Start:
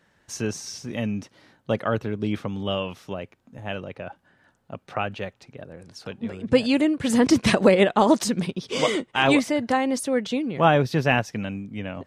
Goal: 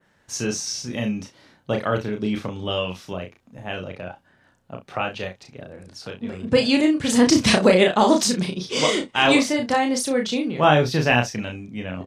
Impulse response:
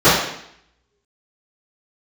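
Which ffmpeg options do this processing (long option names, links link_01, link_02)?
-filter_complex "[0:a]adynamicequalizer=threshold=0.00708:dfrequency=5300:dqfactor=0.77:tfrequency=5300:tqfactor=0.77:attack=5:release=100:ratio=0.375:range=3.5:mode=boostabove:tftype=bell,asplit=2[link_01][link_02];[link_02]aecho=0:1:33|65:0.631|0.168[link_03];[link_01][link_03]amix=inputs=2:normalize=0"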